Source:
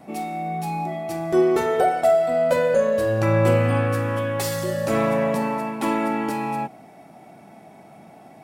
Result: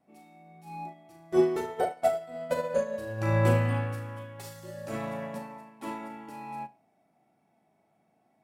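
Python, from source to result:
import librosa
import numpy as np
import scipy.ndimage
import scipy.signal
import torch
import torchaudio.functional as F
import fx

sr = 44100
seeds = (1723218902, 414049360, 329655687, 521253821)

p1 = x + fx.room_flutter(x, sr, wall_m=6.4, rt60_s=0.34, dry=0)
p2 = fx.upward_expand(p1, sr, threshold_db=-28.0, expansion=2.5)
y = p2 * 10.0 ** (-3.5 / 20.0)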